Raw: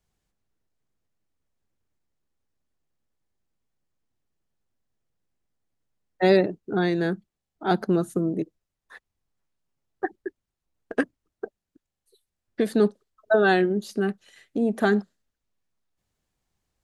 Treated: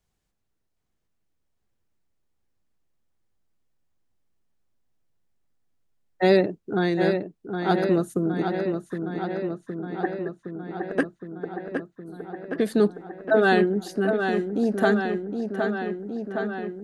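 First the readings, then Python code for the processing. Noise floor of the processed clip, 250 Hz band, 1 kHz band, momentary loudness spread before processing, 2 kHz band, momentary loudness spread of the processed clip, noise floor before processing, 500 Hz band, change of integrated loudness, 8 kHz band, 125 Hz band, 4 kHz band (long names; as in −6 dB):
−75 dBFS, +1.5 dB, +2.0 dB, 20 LU, +1.5 dB, 13 LU, below −85 dBFS, +2.0 dB, −0.5 dB, can't be measured, +1.5 dB, +1.0 dB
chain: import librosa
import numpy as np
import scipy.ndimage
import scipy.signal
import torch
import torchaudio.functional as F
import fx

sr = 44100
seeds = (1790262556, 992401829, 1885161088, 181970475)

y = fx.echo_filtered(x, sr, ms=765, feedback_pct=75, hz=4700.0, wet_db=-6.0)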